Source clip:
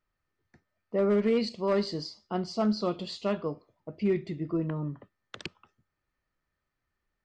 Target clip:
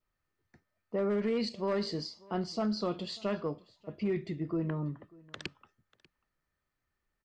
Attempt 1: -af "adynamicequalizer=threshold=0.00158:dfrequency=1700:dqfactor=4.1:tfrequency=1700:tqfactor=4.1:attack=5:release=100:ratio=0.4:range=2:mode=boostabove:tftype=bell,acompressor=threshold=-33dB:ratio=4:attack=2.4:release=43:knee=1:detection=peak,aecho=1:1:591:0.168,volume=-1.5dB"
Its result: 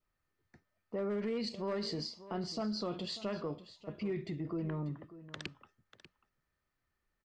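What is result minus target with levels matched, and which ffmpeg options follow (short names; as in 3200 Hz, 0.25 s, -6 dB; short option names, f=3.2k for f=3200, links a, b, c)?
echo-to-direct +8.5 dB; compressor: peak gain reduction +5 dB
-af "adynamicequalizer=threshold=0.00158:dfrequency=1700:dqfactor=4.1:tfrequency=1700:tqfactor=4.1:attack=5:release=100:ratio=0.4:range=2:mode=boostabove:tftype=bell,acompressor=threshold=-26dB:ratio=4:attack=2.4:release=43:knee=1:detection=peak,aecho=1:1:591:0.0631,volume=-1.5dB"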